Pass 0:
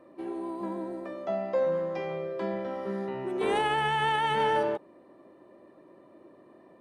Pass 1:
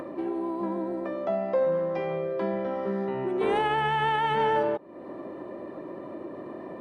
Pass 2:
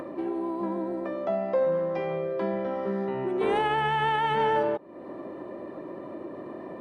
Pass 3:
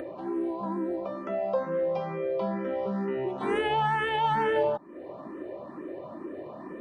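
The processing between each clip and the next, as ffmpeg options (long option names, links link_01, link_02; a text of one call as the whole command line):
ffmpeg -i in.wav -filter_complex "[0:a]asplit=2[link_01][link_02];[link_02]acompressor=threshold=-36dB:ratio=6,volume=1dB[link_03];[link_01][link_03]amix=inputs=2:normalize=0,lowpass=frequency=2300:poles=1,acompressor=mode=upward:threshold=-28dB:ratio=2.5" out.wav
ffmpeg -i in.wav -af anull out.wav
ffmpeg -i in.wav -filter_complex "[0:a]asplit=2[link_01][link_02];[link_02]afreqshift=2.2[link_03];[link_01][link_03]amix=inputs=2:normalize=1,volume=2dB" out.wav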